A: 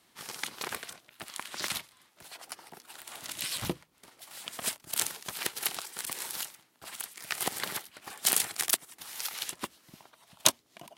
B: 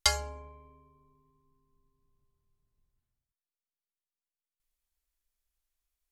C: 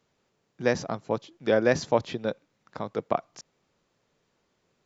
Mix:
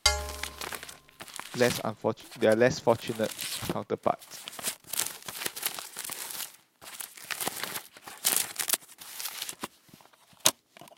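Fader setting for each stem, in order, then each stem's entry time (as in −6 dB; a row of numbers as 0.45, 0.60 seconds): 0.0, +2.0, −0.5 decibels; 0.00, 0.00, 0.95 seconds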